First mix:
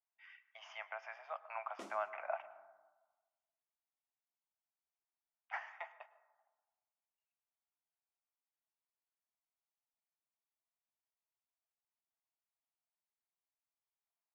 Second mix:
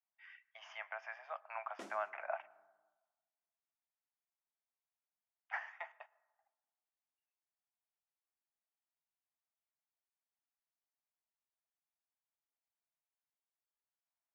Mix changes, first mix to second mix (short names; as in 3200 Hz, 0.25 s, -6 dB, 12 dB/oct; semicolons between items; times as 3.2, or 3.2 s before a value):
speech: send -8.5 dB; master: add bell 1700 Hz +5.5 dB 0.32 oct